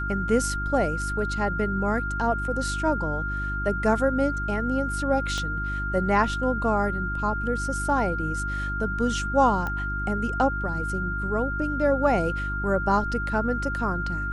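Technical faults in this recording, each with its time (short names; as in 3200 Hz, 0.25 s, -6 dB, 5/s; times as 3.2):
hum 50 Hz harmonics 7 -31 dBFS
tone 1400 Hz -29 dBFS
5.38 pop -18 dBFS
9.67 pop -18 dBFS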